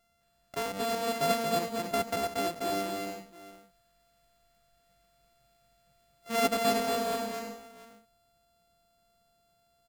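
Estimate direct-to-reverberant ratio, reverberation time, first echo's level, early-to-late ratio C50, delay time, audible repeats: no reverb, no reverb, -4.0 dB, no reverb, 231 ms, 3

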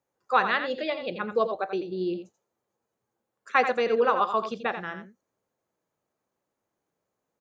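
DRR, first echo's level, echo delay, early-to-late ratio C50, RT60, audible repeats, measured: no reverb, -9.0 dB, 86 ms, no reverb, no reverb, 1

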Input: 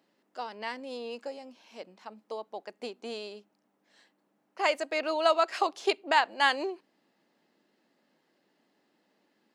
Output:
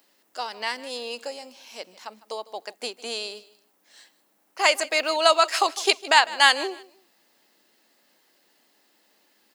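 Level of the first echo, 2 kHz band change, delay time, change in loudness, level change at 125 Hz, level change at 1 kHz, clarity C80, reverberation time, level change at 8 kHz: -19.0 dB, +8.5 dB, 153 ms, +7.5 dB, no reading, +6.0 dB, no reverb, no reverb, +17.5 dB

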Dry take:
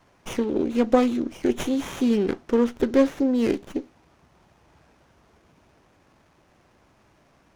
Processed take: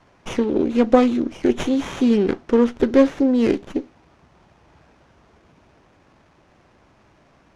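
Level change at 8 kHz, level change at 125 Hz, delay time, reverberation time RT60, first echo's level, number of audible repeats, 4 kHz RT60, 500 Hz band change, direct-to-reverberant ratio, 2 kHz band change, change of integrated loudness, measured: no reading, +4.5 dB, no echo, no reverb, no echo, no echo, no reverb, +4.5 dB, no reverb, +4.0 dB, +4.5 dB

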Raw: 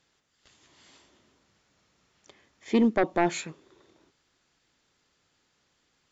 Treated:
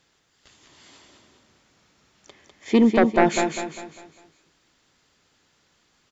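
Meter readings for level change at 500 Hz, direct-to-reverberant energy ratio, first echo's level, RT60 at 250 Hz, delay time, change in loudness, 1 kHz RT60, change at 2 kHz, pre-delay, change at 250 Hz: +7.0 dB, no reverb, -5.5 dB, no reverb, 200 ms, +5.5 dB, no reverb, +7.0 dB, no reverb, +6.5 dB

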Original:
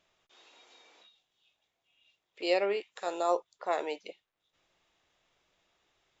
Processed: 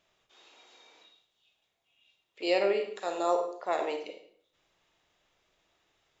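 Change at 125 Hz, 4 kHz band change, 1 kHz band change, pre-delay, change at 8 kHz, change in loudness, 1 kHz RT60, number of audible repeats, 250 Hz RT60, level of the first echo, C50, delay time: no reading, +1.0 dB, +1.0 dB, 32 ms, no reading, +2.0 dB, 0.60 s, no echo, 0.65 s, no echo, 7.0 dB, no echo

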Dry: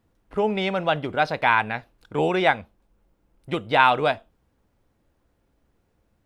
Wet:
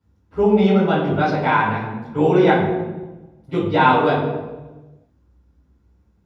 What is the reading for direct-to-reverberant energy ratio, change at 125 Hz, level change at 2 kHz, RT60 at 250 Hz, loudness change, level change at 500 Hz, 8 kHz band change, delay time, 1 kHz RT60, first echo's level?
-11.0 dB, +11.0 dB, 0.0 dB, 1.4 s, +4.5 dB, +7.0 dB, no reading, no echo, 1.1 s, no echo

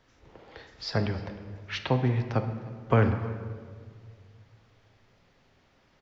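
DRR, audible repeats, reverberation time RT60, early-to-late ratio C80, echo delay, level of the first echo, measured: 7.0 dB, 1, 1.9 s, 10.0 dB, 307 ms, -21.5 dB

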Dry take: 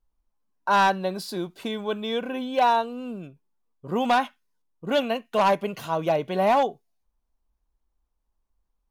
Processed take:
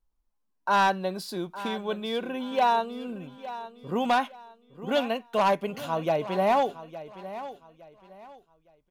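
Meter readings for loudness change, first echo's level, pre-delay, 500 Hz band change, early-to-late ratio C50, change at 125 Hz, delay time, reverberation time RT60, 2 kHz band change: -3.0 dB, -14.5 dB, no reverb, -2.5 dB, no reverb, -2.5 dB, 862 ms, no reverb, -2.5 dB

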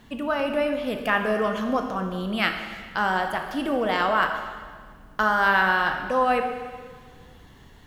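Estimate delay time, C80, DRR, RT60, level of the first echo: no echo, 8.0 dB, 4.5 dB, 1.7 s, no echo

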